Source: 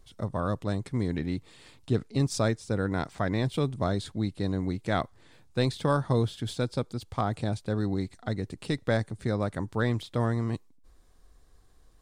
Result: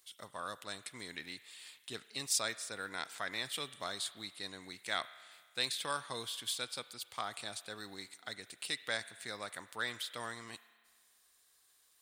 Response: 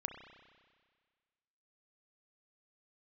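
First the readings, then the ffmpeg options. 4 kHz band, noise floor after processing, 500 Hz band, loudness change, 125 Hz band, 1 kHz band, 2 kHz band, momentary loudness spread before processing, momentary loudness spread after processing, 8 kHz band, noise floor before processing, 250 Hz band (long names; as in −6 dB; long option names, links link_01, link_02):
+2.5 dB, −70 dBFS, −16.0 dB, −9.5 dB, −29.0 dB, −8.5 dB, −2.5 dB, 7 LU, 12 LU, +5.0 dB, −58 dBFS, −23.0 dB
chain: -filter_complex "[0:a]aderivative,asplit=2[link_01][link_02];[link_02]bandpass=frequency=5600:width_type=q:width=0.66:csg=0[link_03];[1:a]atrim=start_sample=2205,lowpass=3100[link_04];[link_03][link_04]afir=irnorm=-1:irlink=0,volume=4.5dB[link_05];[link_01][link_05]amix=inputs=2:normalize=0,volume=6dB"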